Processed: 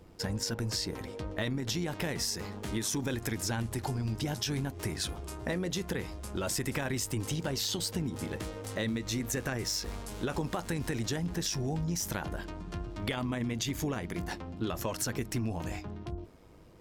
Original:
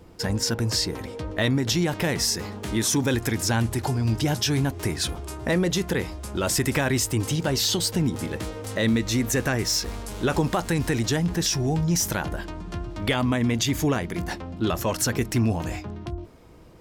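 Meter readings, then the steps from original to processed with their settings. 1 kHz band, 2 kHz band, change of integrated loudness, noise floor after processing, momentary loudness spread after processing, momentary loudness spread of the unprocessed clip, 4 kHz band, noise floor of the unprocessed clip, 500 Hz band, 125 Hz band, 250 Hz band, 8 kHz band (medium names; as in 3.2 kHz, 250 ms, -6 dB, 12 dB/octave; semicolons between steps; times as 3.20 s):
-9.5 dB, -9.5 dB, -9.5 dB, -45 dBFS, 7 LU, 9 LU, -9.0 dB, -39 dBFS, -9.5 dB, -9.5 dB, -9.5 dB, -9.0 dB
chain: AM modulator 100 Hz, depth 30%; compression, threshold -25 dBFS, peak gain reduction 6 dB; trim -4 dB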